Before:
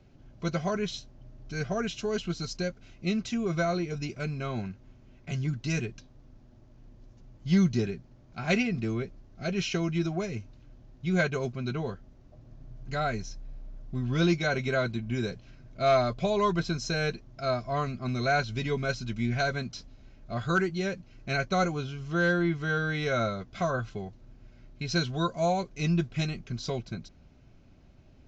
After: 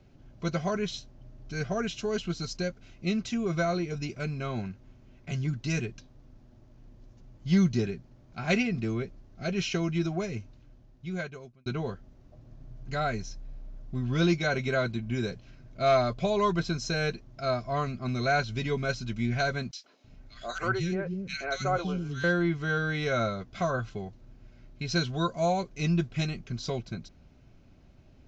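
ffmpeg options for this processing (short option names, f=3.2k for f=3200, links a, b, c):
-filter_complex "[0:a]asettb=1/sr,asplit=3[a][b][c];[a]atrim=end=19.714[d];[b]atrim=start=19.71:end=22.24,asetpts=PTS-STARTPTS,afade=t=in:d=0.004:c=qsin,afade=t=out:st=2.526:d=0.004:c=qsin,acrossover=split=320|1900[e][f][g];[f]adelay=130[h];[e]adelay=330[i];[i][h][g]amix=inputs=3:normalize=0,atrim=end_sample=111573[j];[c]atrim=start=22.236[k];[d][j]acrossfade=d=0.004:c1=hsin:c2=qsin[l];[l][k]acrossfade=d=0.004:c1=qsin:c2=hsin,asplit=2[m][n];[m]atrim=end=11.66,asetpts=PTS-STARTPTS,afade=t=out:st=10.37:d=1.29[o];[n]atrim=start=11.66,asetpts=PTS-STARTPTS,afade=t=in:d=0.004:c=hsin[p];[o][p]concat=n=2:v=0:a=1"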